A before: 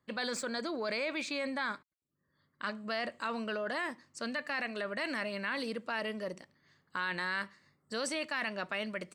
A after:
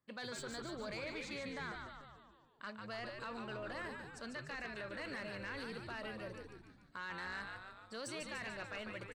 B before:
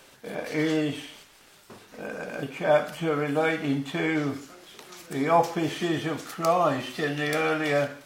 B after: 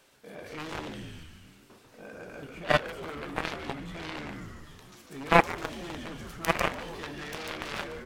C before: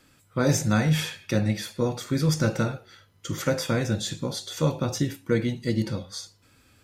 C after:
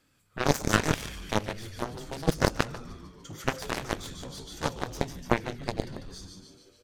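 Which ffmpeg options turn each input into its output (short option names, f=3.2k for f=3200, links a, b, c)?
-filter_complex "[0:a]asplit=9[a][b][c][d][e][f][g][h][i];[b]adelay=146,afreqshift=-100,volume=-5dB[j];[c]adelay=292,afreqshift=-200,volume=-9.9dB[k];[d]adelay=438,afreqshift=-300,volume=-14.8dB[l];[e]adelay=584,afreqshift=-400,volume=-19.6dB[m];[f]adelay=730,afreqshift=-500,volume=-24.5dB[n];[g]adelay=876,afreqshift=-600,volume=-29.4dB[o];[h]adelay=1022,afreqshift=-700,volume=-34.3dB[p];[i]adelay=1168,afreqshift=-800,volume=-39.2dB[q];[a][j][k][l][m][n][o][p][q]amix=inputs=9:normalize=0,aeval=exprs='0.355*(cos(1*acos(clip(val(0)/0.355,-1,1)))-cos(1*PI/2))+0.141*(cos(3*acos(clip(val(0)/0.355,-1,1)))-cos(3*PI/2))':c=same,volume=5dB"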